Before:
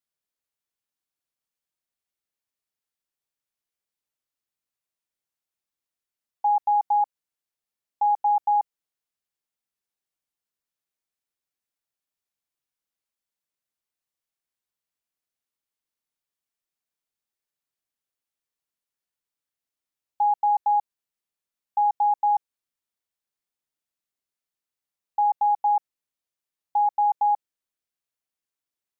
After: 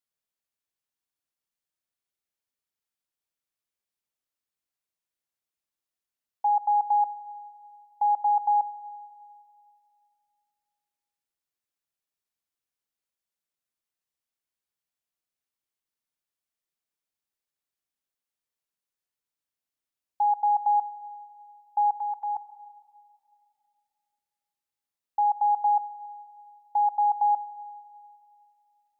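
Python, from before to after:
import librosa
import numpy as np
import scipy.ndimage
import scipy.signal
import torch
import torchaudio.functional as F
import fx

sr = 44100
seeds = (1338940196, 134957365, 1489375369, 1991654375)

y = fx.highpass(x, sr, hz=970.0, slope=24, at=(21.92, 22.35), fade=0.02)
y = fx.rev_schroeder(y, sr, rt60_s=2.4, comb_ms=31, drr_db=15.5)
y = y * 10.0 ** (-2.0 / 20.0)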